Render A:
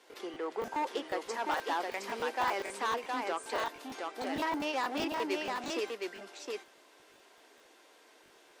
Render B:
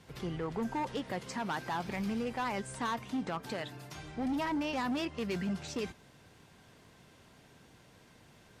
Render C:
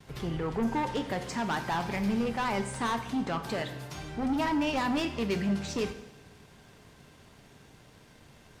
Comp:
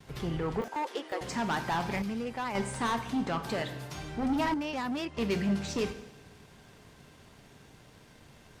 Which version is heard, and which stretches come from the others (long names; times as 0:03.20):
C
0:00.61–0:01.21: punch in from A
0:02.02–0:02.55: punch in from B
0:04.54–0:05.17: punch in from B